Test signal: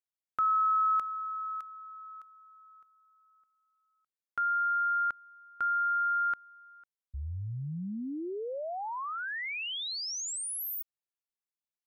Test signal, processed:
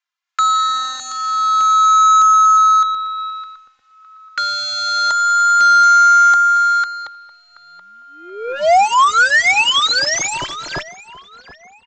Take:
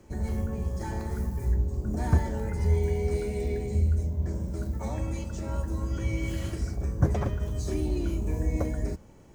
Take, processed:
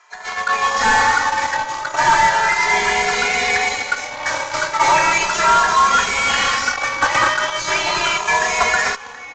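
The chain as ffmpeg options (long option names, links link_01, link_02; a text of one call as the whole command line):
ffmpeg -i in.wav -filter_complex "[0:a]dynaudnorm=framelen=220:gausssize=5:maxgain=16dB,highpass=frequency=1000:width=0.5412,highpass=frequency=1000:width=1.3066,asplit=2[link_01][link_02];[link_02]acrusher=bits=2:mix=0:aa=0.5,volume=-8dB[link_03];[link_01][link_03]amix=inputs=2:normalize=0,acontrast=73,asplit=2[link_04][link_05];[link_05]highpass=frequency=720:poles=1,volume=33dB,asoftclip=type=tanh:threshold=-0.5dB[link_06];[link_04][link_06]amix=inputs=2:normalize=0,lowpass=frequency=1500:poles=1,volume=-6dB,asplit=2[link_07][link_08];[link_08]adelay=728,lowpass=frequency=3600:poles=1,volume=-10.5dB,asplit=2[link_09][link_10];[link_10]adelay=728,lowpass=frequency=3600:poles=1,volume=0.53,asplit=2[link_11][link_12];[link_12]adelay=728,lowpass=frequency=3600:poles=1,volume=0.53,asplit=2[link_13][link_14];[link_14]adelay=728,lowpass=frequency=3600:poles=1,volume=0.53,asplit=2[link_15][link_16];[link_16]adelay=728,lowpass=frequency=3600:poles=1,volume=0.53,asplit=2[link_17][link_18];[link_18]adelay=728,lowpass=frequency=3600:poles=1,volume=0.53[link_19];[link_07][link_09][link_11][link_13][link_15][link_17][link_19]amix=inputs=7:normalize=0,aeval=exprs='0.891*(cos(1*acos(clip(val(0)/0.891,-1,1)))-cos(1*PI/2))+0.0708*(cos(2*acos(clip(val(0)/0.891,-1,1)))-cos(2*PI/2))+0.0126*(cos(4*acos(clip(val(0)/0.891,-1,1)))-cos(4*PI/2))+0.1*(cos(7*acos(clip(val(0)/0.891,-1,1)))-cos(7*PI/2))':channel_layout=same,aresample=16000,asoftclip=type=hard:threshold=-11.5dB,aresample=44100,asplit=2[link_20][link_21];[link_21]adelay=2.5,afreqshift=0.36[link_22];[link_20][link_22]amix=inputs=2:normalize=1,volume=4dB" out.wav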